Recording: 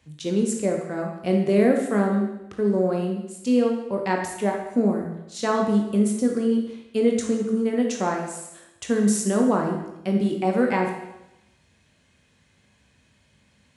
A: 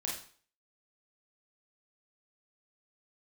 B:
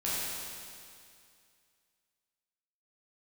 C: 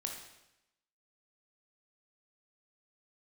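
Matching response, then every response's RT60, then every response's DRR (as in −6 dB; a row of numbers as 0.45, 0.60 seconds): C; 0.45, 2.3, 0.90 seconds; −3.5, −9.5, 1.5 decibels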